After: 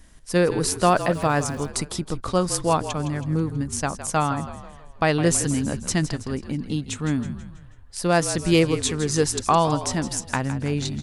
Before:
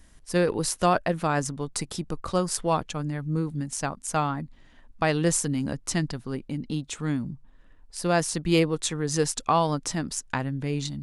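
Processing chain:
echo with shifted repeats 162 ms, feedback 49%, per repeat −43 Hz, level −12 dB
0:00.84–0:01.68: surface crackle 210 per second −39 dBFS
level +3.5 dB

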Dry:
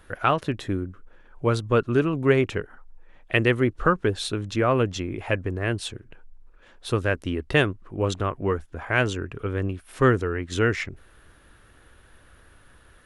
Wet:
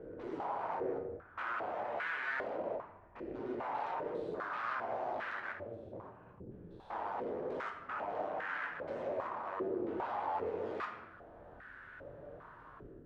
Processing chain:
spectrum averaged block by block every 200 ms
spectral tilt −3.5 dB per octave
automatic gain control gain up to 11.5 dB
brickwall limiter −10.5 dBFS, peak gain reduction 9.5 dB
0:05.40–0:05.93: output level in coarse steps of 17 dB
wave folding −28 dBFS
flanger 0.24 Hz, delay 6.3 ms, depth 4.1 ms, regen −48%
0:07.24–0:07.79: frequency shifter −98 Hz
on a send at −2.5 dB: convolution reverb RT60 1.1 s, pre-delay 19 ms
on the sum: band-pass on a step sequencer 2.5 Hz 370–1,600 Hz
level +5 dB

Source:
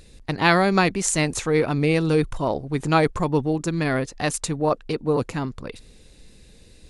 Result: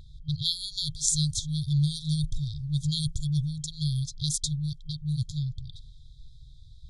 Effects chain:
low-pass that shuts in the quiet parts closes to 2,400 Hz, open at −14.5 dBFS
0:02.56–0:04.50: high-shelf EQ 5,900 Hz +5.5 dB
brick-wall band-stop 160–3,200 Hz
level +2.5 dB

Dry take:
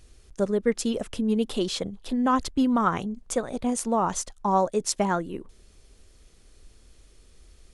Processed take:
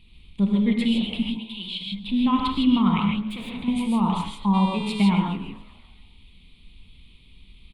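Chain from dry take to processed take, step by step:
0:01.22–0:01.92: guitar amp tone stack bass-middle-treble 5-5-5
hum removal 52.73 Hz, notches 34
on a send: echo with shifted repeats 139 ms, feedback 61%, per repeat +110 Hz, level −20.5 dB
on the sum: reverb whose tail is shaped and stops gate 180 ms rising, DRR −0.5 dB
0:03.27–0:03.68: gain into a clipping stage and back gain 30.5 dB
0:04.53–0:05.09: hum with harmonics 400 Hz, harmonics 23, −41 dBFS 0 dB per octave
drawn EQ curve 120 Hz 0 dB, 200 Hz +10 dB, 310 Hz −5 dB, 610 Hz −16 dB, 1,000 Hz 0 dB, 1,600 Hz −18 dB, 2,300 Hz +9 dB, 3,800 Hz +8 dB, 5,900 Hz −29 dB, 8,900 Hz −14 dB

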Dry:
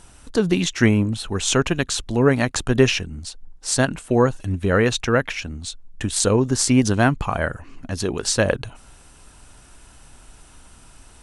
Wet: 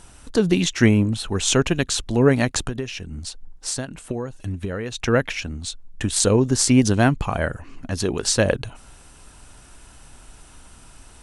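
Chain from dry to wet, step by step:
dynamic equaliser 1,200 Hz, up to −4 dB, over −32 dBFS, Q 1.1
0:02.68–0:05.02: downward compressor 16 to 1, threshold −25 dBFS, peak gain reduction 16 dB
level +1 dB

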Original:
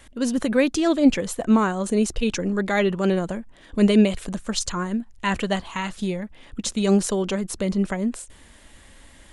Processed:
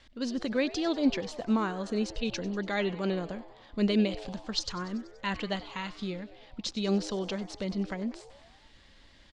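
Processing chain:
transistor ladder low-pass 5,400 Hz, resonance 50%
echo with shifted repeats 96 ms, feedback 64%, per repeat +110 Hz, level −18 dB

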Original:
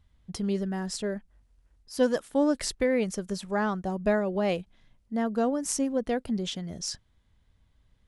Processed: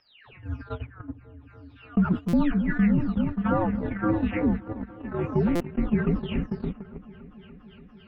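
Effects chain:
every frequency bin delayed by itself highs early, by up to 495 ms
dynamic equaliser 550 Hz, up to +6 dB, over −41 dBFS, Q 2.7
echo whose low-pass opens from repeat to repeat 288 ms, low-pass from 400 Hz, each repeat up 1 octave, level −3 dB
noise gate −25 dBFS, range −34 dB
low-shelf EQ 340 Hz −11.5 dB
single-sideband voice off tune −310 Hz 240–3,000 Hz
buffer that repeats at 0:02.28/0:05.55, samples 256, times 8
envelope flattener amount 50%
level +2 dB

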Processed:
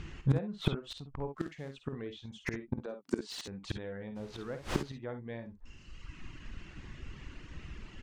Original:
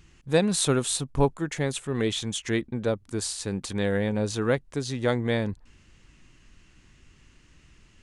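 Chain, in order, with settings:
0:02.76–0:03.48: Butterworth high-pass 160 Hz 36 dB per octave
reverb reduction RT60 1.1 s
treble cut that deepens with the level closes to 1,800 Hz, closed at −20 dBFS
high-shelf EQ 4,700 Hz −9.5 dB
in parallel at 0 dB: brickwall limiter −19 dBFS, peak gain reduction 8.5 dB
0:01.28–0:01.72: on the sum: floating-point word with a short mantissa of 2 bits
0:04.15–0:04.88: background noise pink −37 dBFS
gate with flip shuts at −21 dBFS, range −26 dB
high-frequency loss of the air 69 metres
ambience of single reflections 52 ms −9.5 dB, 66 ms −13.5 dB
slew-rate limiting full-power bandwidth 26 Hz
level +6 dB

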